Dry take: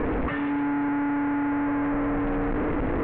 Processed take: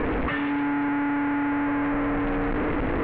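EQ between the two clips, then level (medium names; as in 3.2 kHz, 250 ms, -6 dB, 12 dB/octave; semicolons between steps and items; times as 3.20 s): treble shelf 2.4 kHz +11 dB; 0.0 dB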